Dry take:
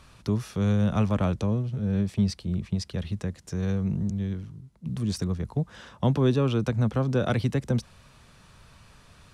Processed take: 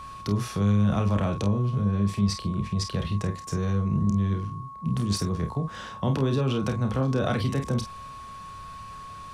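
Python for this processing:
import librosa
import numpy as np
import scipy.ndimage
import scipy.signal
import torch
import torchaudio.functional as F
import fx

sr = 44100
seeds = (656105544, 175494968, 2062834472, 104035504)

p1 = fx.over_compress(x, sr, threshold_db=-30.0, ratio=-1.0)
p2 = x + (p1 * librosa.db_to_amplitude(1.5))
p3 = fx.room_early_taps(p2, sr, ms=(30, 49), db=(-7.5, -9.0))
p4 = p3 + 10.0 ** (-34.0 / 20.0) * np.sin(2.0 * np.pi * 1100.0 * np.arange(len(p3)) / sr)
y = p4 * librosa.db_to_amplitude(-5.0)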